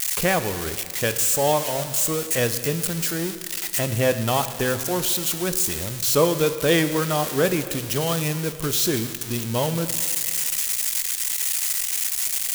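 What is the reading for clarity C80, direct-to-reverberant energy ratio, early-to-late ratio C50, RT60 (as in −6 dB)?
12.0 dB, 10.0 dB, 11.5 dB, 2.2 s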